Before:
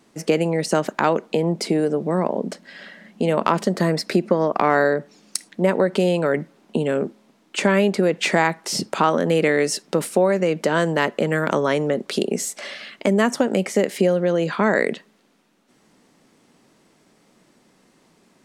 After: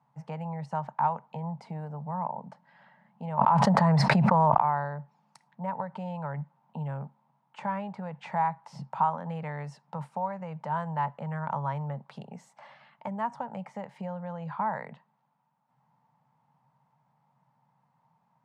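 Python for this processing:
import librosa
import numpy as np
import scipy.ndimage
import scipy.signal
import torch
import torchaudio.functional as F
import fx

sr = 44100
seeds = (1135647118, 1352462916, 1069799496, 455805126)

y = fx.double_bandpass(x, sr, hz=350.0, octaves=2.7)
y = fx.env_flatten(y, sr, amount_pct=100, at=(3.38, 4.59), fade=0.02)
y = F.gain(torch.from_numpy(y), 1.0).numpy()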